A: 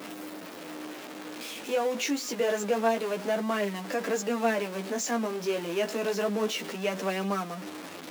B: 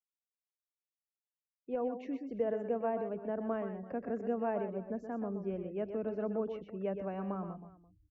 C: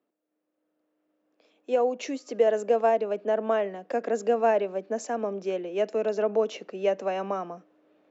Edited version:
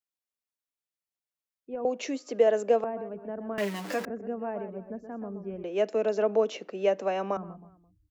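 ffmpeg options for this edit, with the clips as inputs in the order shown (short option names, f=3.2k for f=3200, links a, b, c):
-filter_complex "[2:a]asplit=2[a][b];[1:a]asplit=4[c][d][e][f];[c]atrim=end=1.852[g];[a]atrim=start=1.848:end=2.842[h];[d]atrim=start=2.838:end=3.582[i];[0:a]atrim=start=3.578:end=4.052[j];[e]atrim=start=4.048:end=5.642[k];[b]atrim=start=5.638:end=7.372[l];[f]atrim=start=7.368[m];[g][h]acrossfade=d=0.004:c1=hsin:c2=hsin[n];[n][i]acrossfade=d=0.004:c1=hsin:c2=hsin[o];[o][j]acrossfade=d=0.004:c1=hsin:c2=hsin[p];[p][k]acrossfade=d=0.004:c1=hsin:c2=hsin[q];[q][l]acrossfade=d=0.004:c1=hsin:c2=hsin[r];[r][m]acrossfade=d=0.004:c1=hsin:c2=hsin"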